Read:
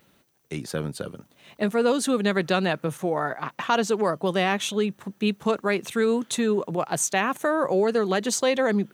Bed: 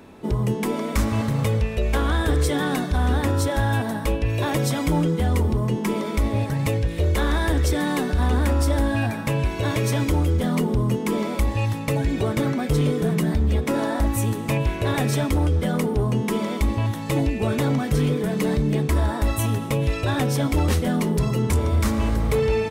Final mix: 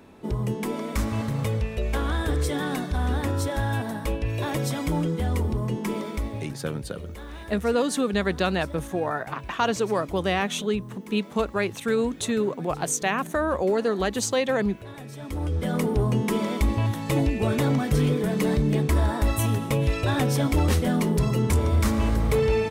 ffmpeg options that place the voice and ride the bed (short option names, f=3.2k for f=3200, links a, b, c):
-filter_complex "[0:a]adelay=5900,volume=-1.5dB[a];[1:a]volume=12.5dB,afade=t=out:st=5.98:d=0.61:silence=0.211349,afade=t=in:st=15.17:d=0.72:silence=0.141254[b];[a][b]amix=inputs=2:normalize=0"